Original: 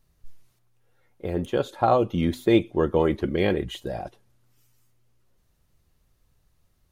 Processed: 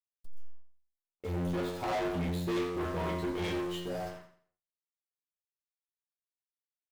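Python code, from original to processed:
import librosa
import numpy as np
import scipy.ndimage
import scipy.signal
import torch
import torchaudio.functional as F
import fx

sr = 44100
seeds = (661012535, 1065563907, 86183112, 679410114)

y = np.where(np.abs(x) >= 10.0 ** (-43.5 / 20.0), x, 0.0)
y = fx.stiff_resonator(y, sr, f0_hz=87.0, decay_s=0.8, stiffness=0.002)
y = fx.leveller(y, sr, passes=5)
y = fx.echo_feedback(y, sr, ms=86, feedback_pct=32, wet_db=-10)
y = F.gain(torch.from_numpy(y), -7.5).numpy()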